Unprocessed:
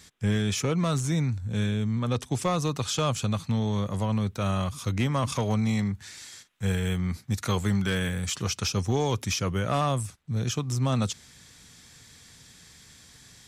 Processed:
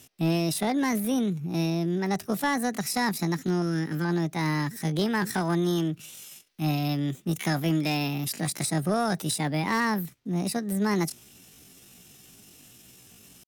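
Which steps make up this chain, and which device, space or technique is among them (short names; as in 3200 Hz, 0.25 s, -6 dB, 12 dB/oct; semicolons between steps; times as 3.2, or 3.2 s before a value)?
chipmunk voice (pitch shift +8 st); 3.62–4.05 band shelf 830 Hz -12 dB 1 oct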